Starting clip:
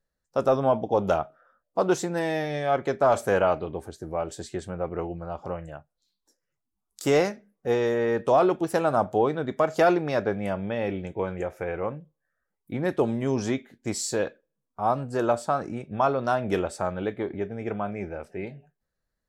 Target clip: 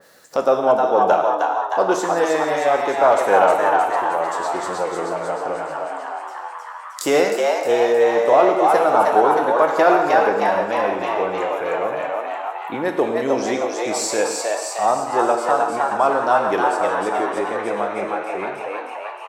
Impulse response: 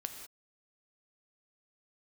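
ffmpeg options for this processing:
-filter_complex "[0:a]highpass=330,asplit=9[a][b][c][d][e][f][g][h][i];[b]adelay=311,afreqshift=110,volume=-3dB[j];[c]adelay=622,afreqshift=220,volume=-7.7dB[k];[d]adelay=933,afreqshift=330,volume=-12.5dB[l];[e]adelay=1244,afreqshift=440,volume=-17.2dB[m];[f]adelay=1555,afreqshift=550,volume=-21.9dB[n];[g]adelay=1866,afreqshift=660,volume=-26.7dB[o];[h]adelay=2177,afreqshift=770,volume=-31.4dB[p];[i]adelay=2488,afreqshift=880,volume=-36.1dB[q];[a][j][k][l][m][n][o][p][q]amix=inputs=9:normalize=0,asplit=2[r][s];[s]acompressor=mode=upward:threshold=-24dB:ratio=2.5,volume=1dB[t];[r][t]amix=inputs=2:normalize=0[u];[1:a]atrim=start_sample=2205,asetrate=48510,aresample=44100[v];[u][v]afir=irnorm=-1:irlink=0,adynamicequalizer=threshold=0.0316:dfrequency=2200:dqfactor=0.7:tfrequency=2200:tqfactor=0.7:attack=5:release=100:ratio=0.375:range=2:mode=cutabove:tftype=highshelf,volume=2.5dB"

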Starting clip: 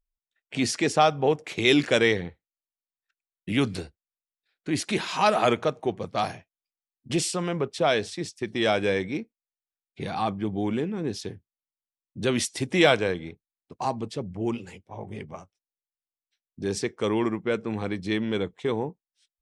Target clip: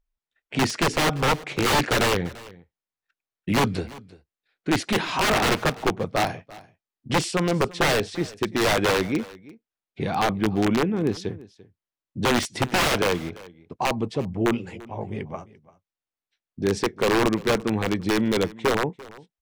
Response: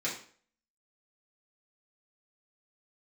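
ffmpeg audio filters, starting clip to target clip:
-filter_complex "[0:a]aeval=exprs='(mod(8.41*val(0)+1,2)-1)/8.41':c=same,lowpass=f=2.5k:p=1,asplit=2[a][b];[b]aecho=0:1:342:0.0944[c];[a][c]amix=inputs=2:normalize=0,volume=6dB"

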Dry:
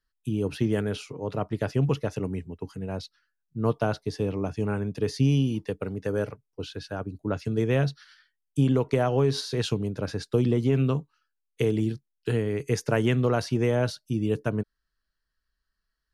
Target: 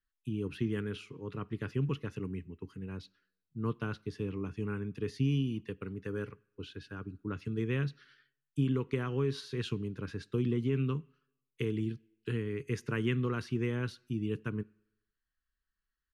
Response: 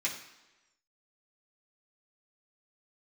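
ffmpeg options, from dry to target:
-filter_complex "[0:a]firequalizer=gain_entry='entry(380,0);entry(640,-19);entry(1100,0);entry(2700,1);entry(4900,-8)':delay=0.05:min_phase=1,asplit=2[a][b];[1:a]atrim=start_sample=2205,asetrate=52920,aresample=44100[c];[b][c]afir=irnorm=-1:irlink=0,volume=-21dB[d];[a][d]amix=inputs=2:normalize=0,volume=-7dB"

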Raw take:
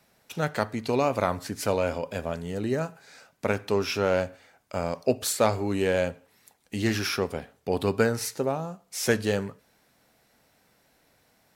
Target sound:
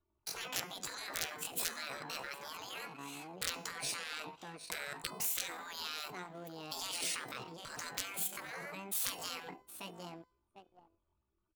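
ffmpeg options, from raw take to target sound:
-filter_complex "[0:a]asplit=2[a][b];[b]aecho=0:1:749|1498:0.0891|0.0178[c];[a][c]amix=inputs=2:normalize=0,acompressor=threshold=-32dB:ratio=2.5,anlmdn=0.001,aeval=exprs='(mod(8.41*val(0)+1,2)-1)/8.41':c=same,bandreject=f=301.2:t=h:w=4,bandreject=f=602.4:t=h:w=4,bandreject=f=903.6:t=h:w=4,bandreject=f=1.2048k:t=h:w=4,bandreject=f=1.506k:t=h:w=4,bandreject=f=1.8072k:t=h:w=4,bandreject=f=2.1084k:t=h:w=4,bandreject=f=2.4096k:t=h:w=4,bandreject=f=2.7108k:t=h:w=4,bandreject=f=3.012k:t=h:w=4,bandreject=f=3.3132k:t=h:w=4,bandreject=f=3.6144k:t=h:w=4,bandreject=f=3.9156k:t=h:w=4,bandreject=f=4.2168k:t=h:w=4,bandreject=f=4.518k:t=h:w=4,bandreject=f=4.8192k:t=h:w=4,bandreject=f=5.1204k:t=h:w=4,bandreject=f=5.4216k:t=h:w=4,bandreject=f=5.7228k:t=h:w=4,bandreject=f=6.024k:t=h:w=4,bandreject=f=6.3252k:t=h:w=4,bandreject=f=6.6264k:t=h:w=4,bandreject=f=6.9276k:t=h:w=4,bandreject=f=7.2288k:t=h:w=4,bandreject=f=7.53k:t=h:w=4,bandreject=f=7.8312k:t=h:w=4,bandreject=f=8.1324k:t=h:w=4,bandreject=f=8.4336k:t=h:w=4,bandreject=f=8.7348k:t=h:w=4,bandreject=f=9.036k:t=h:w=4,bandreject=f=9.3372k:t=h:w=4,bandreject=f=9.6384k:t=h:w=4,bandreject=f=9.9396k:t=h:w=4,bandreject=f=10.2408k:t=h:w=4,asetrate=74167,aresample=44100,atempo=0.594604,adynamicequalizer=threshold=0.002:dfrequency=270:dqfactor=2.7:tfrequency=270:tqfactor=2.7:attack=5:release=100:ratio=0.375:range=3:mode=boostabove:tftype=bell,afftfilt=real='re*lt(hypot(re,im),0.0316)':imag='im*lt(hypot(re,im),0.0316)':win_size=1024:overlap=0.75,volume=2dB"

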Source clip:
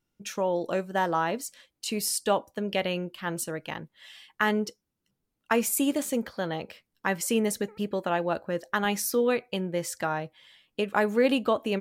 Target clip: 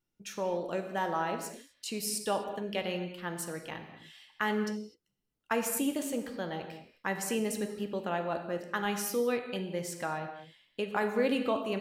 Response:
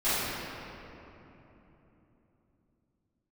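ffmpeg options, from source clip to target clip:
-filter_complex "[0:a]asplit=2[a][b];[b]highshelf=f=10k:g=-11[c];[1:a]atrim=start_sample=2205,afade=t=out:st=0.31:d=0.01,atrim=end_sample=14112,highshelf=f=4.8k:g=9[d];[c][d]afir=irnorm=-1:irlink=0,volume=-18dB[e];[a][e]amix=inputs=2:normalize=0,volume=-7dB"

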